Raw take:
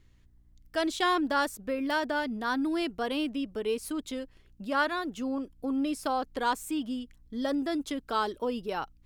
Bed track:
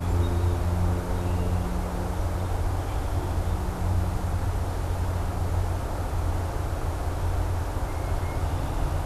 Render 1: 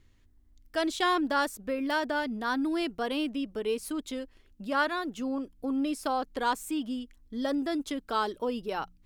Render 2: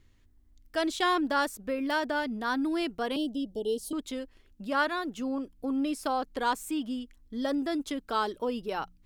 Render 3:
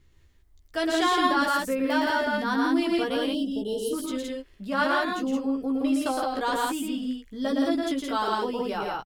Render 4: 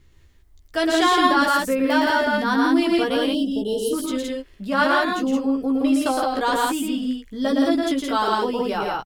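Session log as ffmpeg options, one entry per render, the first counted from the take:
-af "bandreject=f=60:t=h:w=4,bandreject=f=120:t=h:w=4,bandreject=f=180:t=h:w=4"
-filter_complex "[0:a]asettb=1/sr,asplit=3[a][b][c];[a]atrim=end=3.164[d];[b]atrim=start=3.16:end=3.93,asetpts=PTS-STARTPTS,afade=t=in:d=0.004:c=qsin,afade=t=out:st=0.766:d=0.004:c=qsin,asuperstop=centerf=1600:order=20:qfactor=0.77[e];[c]atrim=start=3.926[f];[d][e]acrossfade=d=0.004:c1=hsin:c2=qsin[g];[g][f]acrossfade=d=0.004:c1=qsin:c2=hsin"
-filter_complex "[0:a]asplit=2[a][b];[b]adelay=15,volume=-4dB[c];[a][c]amix=inputs=2:normalize=0,aecho=1:1:113.7|169.1:0.708|0.794"
-af "volume=5.5dB"

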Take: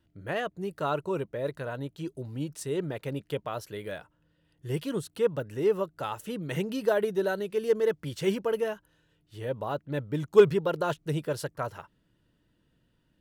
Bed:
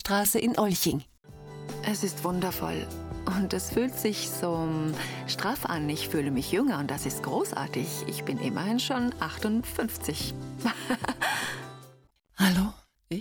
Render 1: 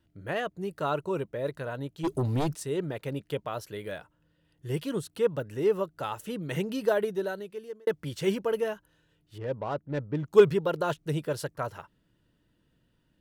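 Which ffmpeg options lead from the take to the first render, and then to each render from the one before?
-filter_complex "[0:a]asplit=3[a][b][c];[a]afade=t=out:st=2.03:d=0.02[d];[b]aeval=exprs='0.075*sin(PI/2*2.82*val(0)/0.075)':c=same,afade=t=in:st=2.03:d=0.02,afade=t=out:st=2.54:d=0.02[e];[c]afade=t=in:st=2.54:d=0.02[f];[d][e][f]amix=inputs=3:normalize=0,asettb=1/sr,asplit=3[g][h][i];[g]atrim=end=9.384[j];[h]atrim=start=9.38:end=10.26,asetpts=PTS-STARTPTS,afade=t=in:d=0.004:c=qsin,afade=t=out:st=0.876:d=0.004:c=qsin,adynamicsmooth=sensitivity=5:basefreq=1.1k[k];[i]atrim=start=10.256[l];[j][k]acrossfade=d=0.004:c1=hsin:c2=qsin[m];[m][l]acrossfade=d=0.004:c1=qsin:c2=hsin,asplit=2[n][o];[n]atrim=end=7.87,asetpts=PTS-STARTPTS,afade=t=out:st=6.92:d=0.95[p];[o]atrim=start=7.87,asetpts=PTS-STARTPTS,afade=t=in:d=0.004:c=hsin[q];[p][q]concat=n=2:v=0:a=1"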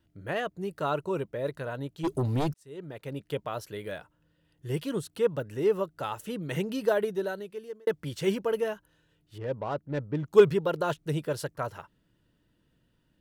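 -filter_complex "[0:a]asplit=2[a][b];[a]atrim=end=2.54,asetpts=PTS-STARTPTS,afade=t=out:st=2.536:d=0.004:c=hsin[c];[b]atrim=start=2.54,asetpts=PTS-STARTPTS,afade=t=in:d=0.83[d];[c][d]concat=n=2:v=0:a=1"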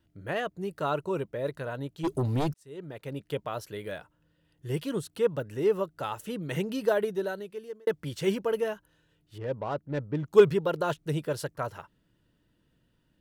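-af anull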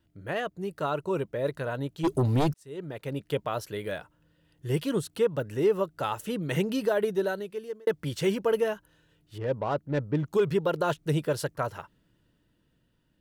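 -af "alimiter=limit=-19dB:level=0:latency=1:release=180,dynaudnorm=f=140:g=17:m=3.5dB"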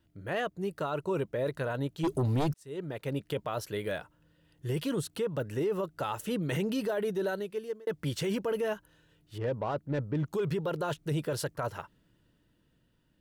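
-af "alimiter=limit=-23.5dB:level=0:latency=1:release=11"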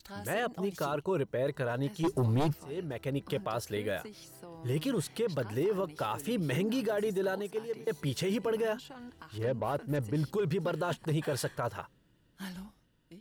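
-filter_complex "[1:a]volume=-19.5dB[a];[0:a][a]amix=inputs=2:normalize=0"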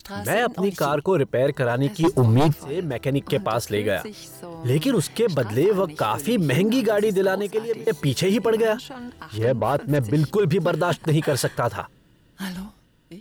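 -af "volume=11dB"

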